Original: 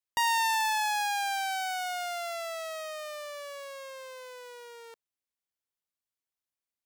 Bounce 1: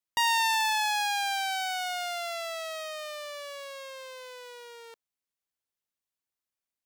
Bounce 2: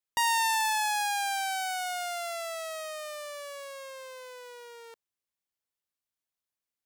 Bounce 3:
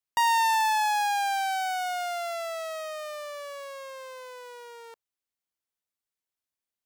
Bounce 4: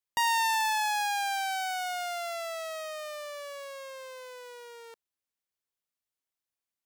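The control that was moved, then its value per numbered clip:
dynamic equaliser, frequency: 3,500, 9,400, 870, 210 Hertz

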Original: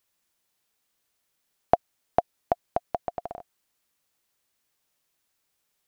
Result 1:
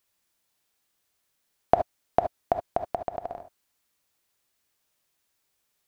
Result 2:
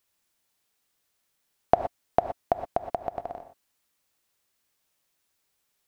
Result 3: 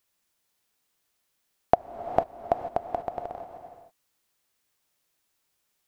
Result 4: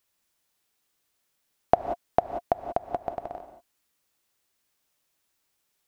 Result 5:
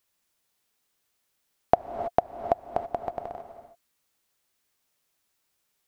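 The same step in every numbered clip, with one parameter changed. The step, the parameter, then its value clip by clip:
reverb whose tail is shaped and stops, gate: 90, 140, 510, 210, 350 milliseconds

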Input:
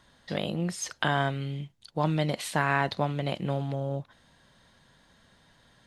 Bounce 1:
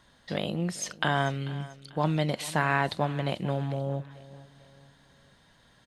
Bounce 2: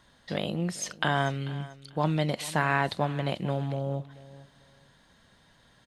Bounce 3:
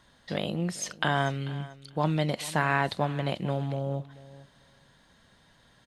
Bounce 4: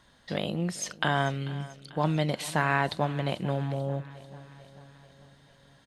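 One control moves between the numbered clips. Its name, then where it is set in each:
repeating echo, feedback: 40, 23, 15, 59%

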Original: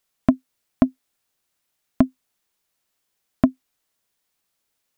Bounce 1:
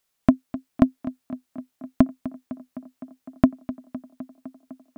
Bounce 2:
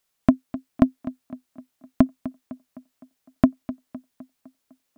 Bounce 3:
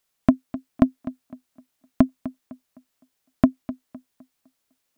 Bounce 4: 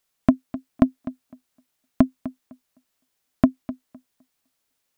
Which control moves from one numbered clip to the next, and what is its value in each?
tape delay, feedback: 86, 58, 37, 20%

